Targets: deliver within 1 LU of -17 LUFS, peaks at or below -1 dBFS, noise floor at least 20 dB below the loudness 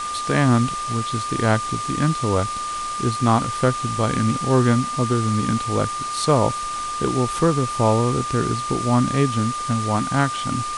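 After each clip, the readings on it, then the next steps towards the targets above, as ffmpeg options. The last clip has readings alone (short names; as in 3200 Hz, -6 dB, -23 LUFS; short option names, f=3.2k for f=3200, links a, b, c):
steady tone 1200 Hz; tone level -25 dBFS; noise floor -27 dBFS; noise floor target -41 dBFS; loudness -21.0 LUFS; peak -3.5 dBFS; loudness target -17.0 LUFS
-> -af "bandreject=f=1.2k:w=30"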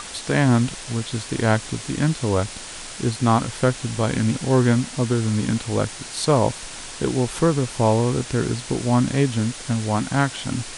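steady tone none; noise floor -36 dBFS; noise floor target -42 dBFS
-> -af "afftdn=nr=6:nf=-36"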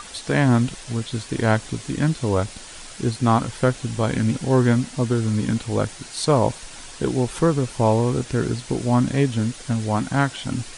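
noise floor -40 dBFS; noise floor target -42 dBFS
-> -af "afftdn=nr=6:nf=-40"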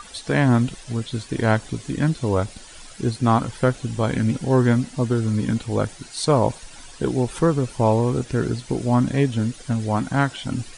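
noise floor -43 dBFS; loudness -22.0 LUFS; peak -4.0 dBFS; loudness target -17.0 LUFS
-> -af "volume=5dB,alimiter=limit=-1dB:level=0:latency=1"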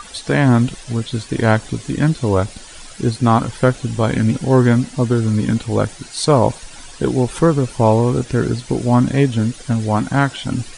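loudness -17.5 LUFS; peak -1.0 dBFS; noise floor -38 dBFS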